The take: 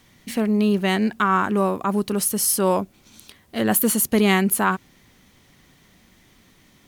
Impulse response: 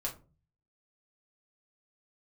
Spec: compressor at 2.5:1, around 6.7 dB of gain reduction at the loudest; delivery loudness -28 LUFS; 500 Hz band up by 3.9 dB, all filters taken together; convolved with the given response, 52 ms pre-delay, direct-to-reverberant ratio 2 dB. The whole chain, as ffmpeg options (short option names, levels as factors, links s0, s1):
-filter_complex "[0:a]equalizer=f=500:t=o:g=5,acompressor=threshold=0.0794:ratio=2.5,asplit=2[s0][s1];[1:a]atrim=start_sample=2205,adelay=52[s2];[s1][s2]afir=irnorm=-1:irlink=0,volume=0.631[s3];[s0][s3]amix=inputs=2:normalize=0,volume=0.531"